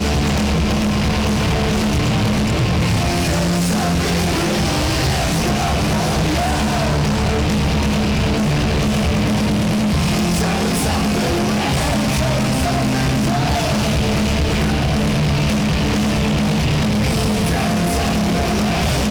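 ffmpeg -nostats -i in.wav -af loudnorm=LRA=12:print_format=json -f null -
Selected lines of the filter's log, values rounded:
"input_i" : "-17.4",
"input_tp" : "-12.1",
"input_lra" : "0.2",
"input_thresh" : "-27.4",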